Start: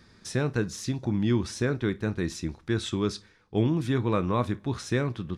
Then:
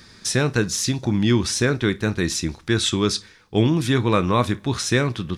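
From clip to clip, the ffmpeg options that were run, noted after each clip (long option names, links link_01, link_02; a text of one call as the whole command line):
ffmpeg -i in.wav -af "highshelf=frequency=2000:gain=9.5,volume=6dB" out.wav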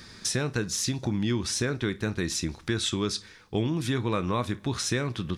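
ffmpeg -i in.wav -af "acompressor=threshold=-28dB:ratio=2.5" out.wav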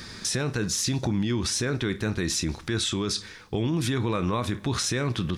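ffmpeg -i in.wav -af "alimiter=level_in=0.5dB:limit=-24dB:level=0:latency=1:release=35,volume=-0.5dB,volume=6.5dB" out.wav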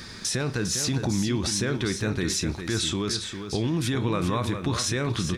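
ffmpeg -i in.wav -af "aecho=1:1:403:0.398" out.wav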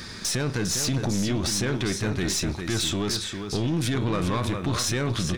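ffmpeg -i in.wav -af "aeval=exprs='(tanh(14.1*val(0)+0.35)-tanh(0.35))/14.1':channel_layout=same,volume=3.5dB" out.wav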